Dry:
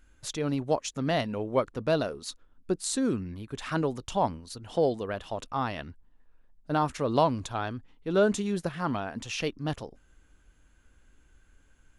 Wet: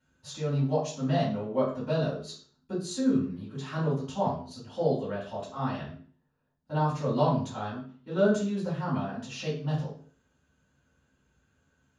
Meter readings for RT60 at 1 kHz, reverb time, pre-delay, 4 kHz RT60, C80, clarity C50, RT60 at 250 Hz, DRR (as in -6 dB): 0.45 s, 0.45 s, 3 ms, 0.40 s, 9.5 dB, 4.5 dB, 0.50 s, -11.5 dB